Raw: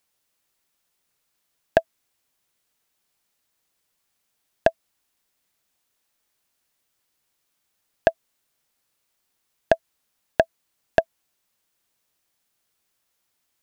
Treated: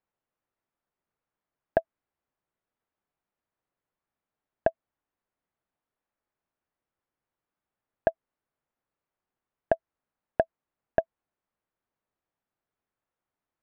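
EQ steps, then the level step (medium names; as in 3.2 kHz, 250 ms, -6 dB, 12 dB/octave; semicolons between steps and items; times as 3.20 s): low-pass 1.4 kHz 12 dB/octave; -5.5 dB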